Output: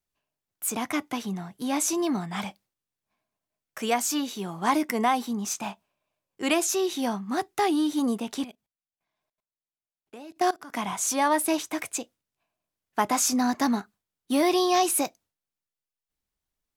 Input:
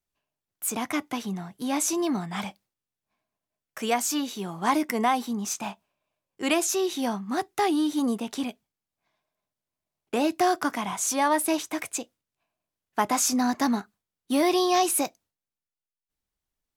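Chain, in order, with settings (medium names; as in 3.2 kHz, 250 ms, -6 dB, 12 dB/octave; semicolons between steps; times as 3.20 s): 8.44–10.74 s: level held to a coarse grid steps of 21 dB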